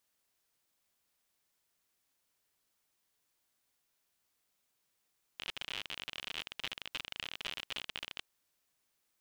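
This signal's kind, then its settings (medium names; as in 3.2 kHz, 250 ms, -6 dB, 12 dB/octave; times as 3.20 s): random clicks 57 per s -23.5 dBFS 2.84 s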